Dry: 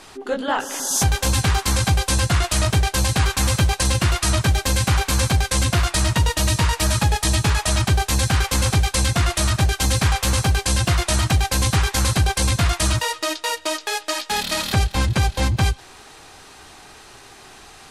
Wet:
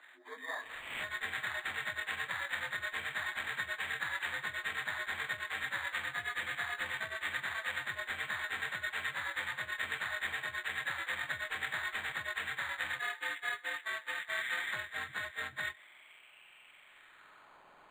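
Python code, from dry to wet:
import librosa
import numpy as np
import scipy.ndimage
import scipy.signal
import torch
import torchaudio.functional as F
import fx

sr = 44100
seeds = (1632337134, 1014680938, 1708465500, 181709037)

y = fx.partial_stretch(x, sr, pct=79)
y = fx.filter_sweep_bandpass(y, sr, from_hz=1800.0, to_hz=4700.0, start_s=15.58, end_s=17.6, q=5.3)
y = np.interp(np.arange(len(y)), np.arange(len(y))[::8], y[::8])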